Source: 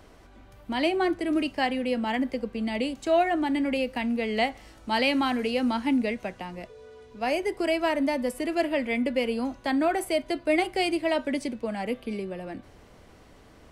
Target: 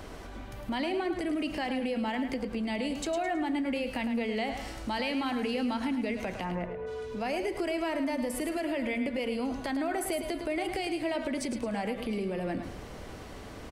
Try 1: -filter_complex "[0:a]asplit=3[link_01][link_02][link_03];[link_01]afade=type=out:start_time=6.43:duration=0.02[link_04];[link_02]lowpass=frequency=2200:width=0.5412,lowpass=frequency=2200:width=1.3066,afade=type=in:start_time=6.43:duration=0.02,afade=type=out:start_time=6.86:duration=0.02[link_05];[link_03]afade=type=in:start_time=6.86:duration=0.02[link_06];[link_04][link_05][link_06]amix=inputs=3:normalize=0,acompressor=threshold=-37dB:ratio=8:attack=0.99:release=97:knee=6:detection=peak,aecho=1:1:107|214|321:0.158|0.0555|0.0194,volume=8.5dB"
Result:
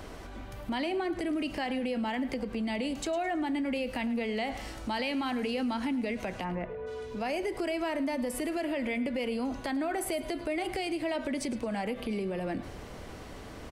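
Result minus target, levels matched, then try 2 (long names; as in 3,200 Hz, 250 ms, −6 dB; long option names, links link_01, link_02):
echo-to-direct −7.5 dB
-filter_complex "[0:a]asplit=3[link_01][link_02][link_03];[link_01]afade=type=out:start_time=6.43:duration=0.02[link_04];[link_02]lowpass=frequency=2200:width=0.5412,lowpass=frequency=2200:width=1.3066,afade=type=in:start_time=6.43:duration=0.02,afade=type=out:start_time=6.86:duration=0.02[link_05];[link_03]afade=type=in:start_time=6.86:duration=0.02[link_06];[link_04][link_05][link_06]amix=inputs=3:normalize=0,acompressor=threshold=-37dB:ratio=8:attack=0.99:release=97:knee=6:detection=peak,aecho=1:1:107|214|321|428:0.376|0.132|0.046|0.0161,volume=8.5dB"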